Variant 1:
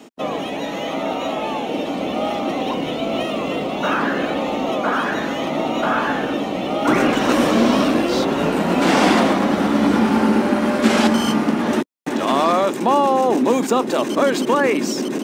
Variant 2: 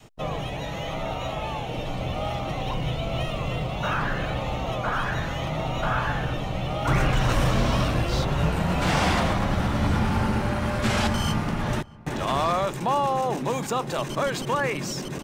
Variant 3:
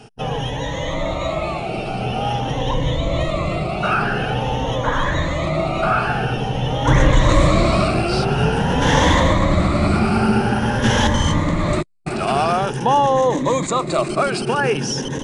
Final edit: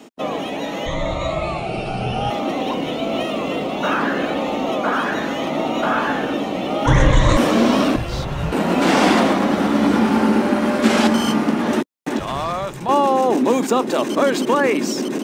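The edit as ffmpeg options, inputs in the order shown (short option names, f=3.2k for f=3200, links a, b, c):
-filter_complex "[2:a]asplit=2[a][b];[1:a]asplit=2[c][d];[0:a]asplit=5[e][f][g][h][i];[e]atrim=end=0.862[j];[a]atrim=start=0.858:end=2.302[k];[f]atrim=start=2.298:end=6.862[l];[b]atrim=start=6.858:end=7.372[m];[g]atrim=start=7.368:end=7.962[n];[c]atrim=start=7.958:end=8.522[o];[h]atrim=start=8.518:end=12.192[p];[d]atrim=start=12.188:end=12.892[q];[i]atrim=start=12.888[r];[j][k]acrossfade=d=0.004:c1=hsin:c2=hsin[s];[s][l]acrossfade=d=0.004:c1=hsin:c2=hsin[t];[t][m]acrossfade=d=0.004:c1=hsin:c2=hsin[u];[u][n]acrossfade=d=0.004:c1=hsin:c2=hsin[v];[v][o]acrossfade=d=0.004:c1=hsin:c2=hsin[w];[w][p]acrossfade=d=0.004:c1=hsin:c2=hsin[x];[x][q]acrossfade=d=0.004:c1=hsin:c2=hsin[y];[y][r]acrossfade=d=0.004:c1=hsin:c2=hsin"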